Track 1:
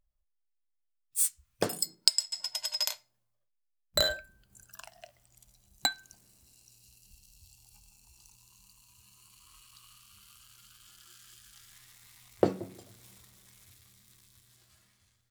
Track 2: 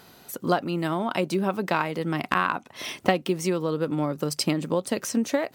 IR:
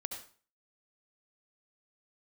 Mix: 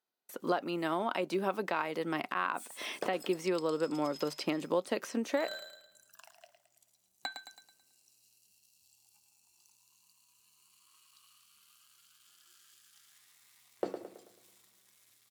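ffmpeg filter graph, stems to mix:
-filter_complex "[0:a]adelay=1400,volume=-7.5dB,asplit=2[a][b];[b]volume=-9dB[c];[1:a]agate=range=-35dB:threshold=-44dB:ratio=16:detection=peak,volume=-4dB,asplit=2[d][e];[e]apad=whole_len=736681[f];[a][f]sidechaincompress=threshold=-40dB:ratio=8:attack=16:release=111[g];[c]aecho=0:1:109|218|327|436|545|654:1|0.44|0.194|0.0852|0.0375|0.0165[h];[g][d][h]amix=inputs=3:normalize=0,acrossover=split=3700[i][j];[j]acompressor=threshold=-47dB:ratio=4:attack=1:release=60[k];[i][k]amix=inputs=2:normalize=0,highpass=310,alimiter=limit=-18.5dB:level=0:latency=1:release=123"

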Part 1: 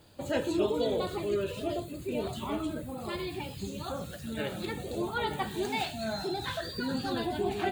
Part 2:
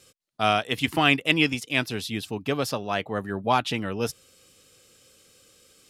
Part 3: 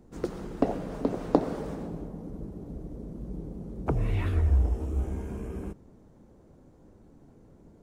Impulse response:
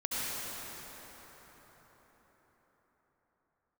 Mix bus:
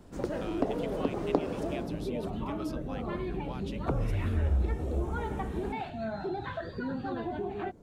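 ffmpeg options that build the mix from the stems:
-filter_complex "[0:a]lowpass=1.7k,alimiter=level_in=2.5dB:limit=-24dB:level=0:latency=1:release=201,volume=-2.5dB,volume=2dB[a];[1:a]acompressor=threshold=-23dB:ratio=6,volume=-16dB[b];[2:a]volume=1dB[c];[a][b][c]amix=inputs=3:normalize=0,acompressor=threshold=-33dB:ratio=1.5"

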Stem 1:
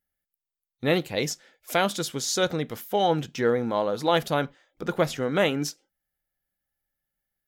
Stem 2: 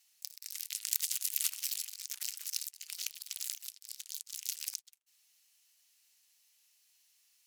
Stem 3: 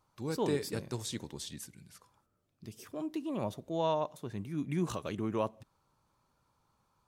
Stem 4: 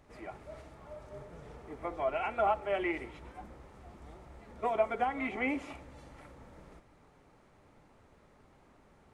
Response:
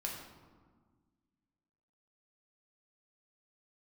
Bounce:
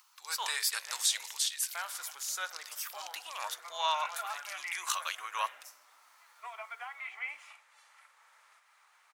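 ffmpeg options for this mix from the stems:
-filter_complex "[0:a]equalizer=f=4.2k:t=o:w=1.9:g=-14,volume=-2.5dB,asplit=2[a][b];[b]volume=-13dB[c];[1:a]lowpass=5.4k,volume=-7dB[d];[2:a]dynaudnorm=f=110:g=5:m=10.5dB,highpass=480,volume=0dB,asplit=2[e][f];[3:a]adelay=1800,volume=-3dB[g];[f]apad=whole_len=329699[h];[a][h]sidechaincompress=threshold=-45dB:ratio=8:attack=39:release=390[i];[4:a]atrim=start_sample=2205[j];[c][j]afir=irnorm=-1:irlink=0[k];[i][d][e][g][k]amix=inputs=5:normalize=0,highpass=f=1.1k:w=0.5412,highpass=f=1.1k:w=1.3066,highshelf=f=7k:g=5,acompressor=mode=upward:threshold=-56dB:ratio=2.5"

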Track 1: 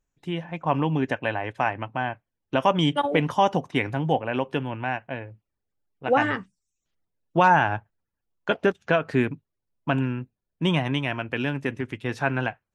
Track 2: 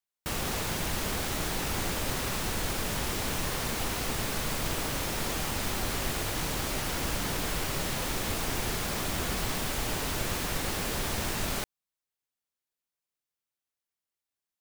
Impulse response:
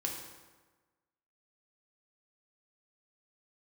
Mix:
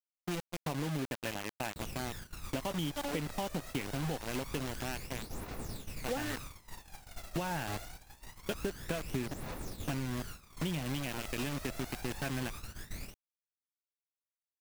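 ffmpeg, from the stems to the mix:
-filter_complex "[0:a]equalizer=f=1.1k:t=o:w=1.9:g=-11,acrusher=bits=4:mix=0:aa=0.000001,volume=-4dB[a];[1:a]bandreject=f=3.1k:w=13,aphaser=in_gain=1:out_gain=1:delay=1.7:decay=0.67:speed=0.25:type=triangular,asoftclip=type=tanh:threshold=-13.5dB,adelay=1500,volume=-15dB[b];[a][b]amix=inputs=2:normalize=0,agate=range=-19dB:threshold=-40dB:ratio=16:detection=peak,acompressor=threshold=-32dB:ratio=6"

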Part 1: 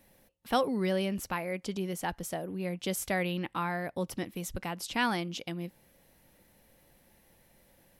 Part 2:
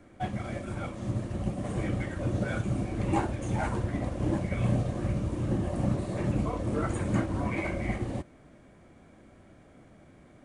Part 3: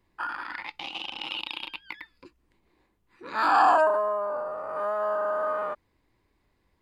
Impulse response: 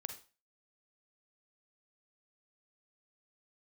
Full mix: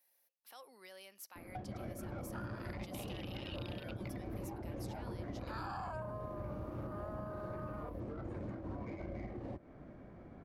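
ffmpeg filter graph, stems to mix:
-filter_complex "[0:a]highpass=760,alimiter=level_in=3.5dB:limit=-24dB:level=0:latency=1:release=159,volume=-3.5dB,volume=-16dB,asplit=2[a][b];[b]volume=-23dB[c];[1:a]acrossover=split=270|660[d][e][f];[d]acompressor=threshold=-43dB:ratio=4[g];[e]acompressor=threshold=-39dB:ratio=4[h];[f]acompressor=threshold=-48dB:ratio=4[i];[g][h][i]amix=inputs=3:normalize=0,alimiter=level_in=8dB:limit=-24dB:level=0:latency=1:release=315,volume=-8dB,adynamicsmooth=sensitivity=7:basefreq=1.7k,adelay=1350,volume=2dB[j];[2:a]adelay=2150,volume=-12dB[k];[3:a]atrim=start_sample=2205[l];[c][l]afir=irnorm=-1:irlink=0[m];[a][j][k][m]amix=inputs=4:normalize=0,acrossover=split=120[n][o];[o]acompressor=threshold=-43dB:ratio=4[p];[n][p]amix=inputs=2:normalize=0,aexciter=amount=1.2:drive=8.1:freq=4.4k"

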